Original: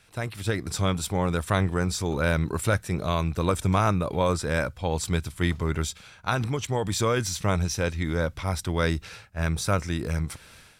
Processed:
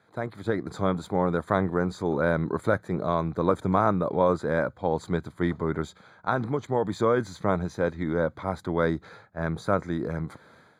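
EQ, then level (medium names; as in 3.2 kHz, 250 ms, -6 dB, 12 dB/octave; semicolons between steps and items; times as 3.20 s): boxcar filter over 16 samples; high-pass 190 Hz 12 dB/octave; +3.5 dB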